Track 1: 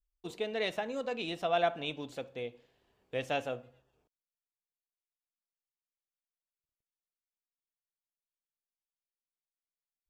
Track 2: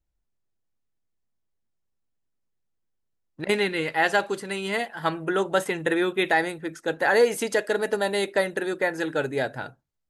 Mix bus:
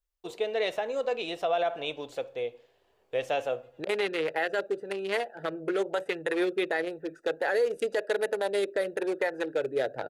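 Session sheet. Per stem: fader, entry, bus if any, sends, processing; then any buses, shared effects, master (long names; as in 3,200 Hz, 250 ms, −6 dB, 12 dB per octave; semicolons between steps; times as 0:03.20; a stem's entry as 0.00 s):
+2.5 dB, 0.00 s, no send, low-shelf EQ 350 Hz +7.5 dB
+2.5 dB, 0.40 s, no send, adaptive Wiener filter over 41 samples; rotating-speaker cabinet horn 1 Hz; multiband upward and downward compressor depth 40%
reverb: not used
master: low shelf with overshoot 330 Hz −11.5 dB, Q 1.5; brickwall limiter −18.5 dBFS, peak gain reduction 9.5 dB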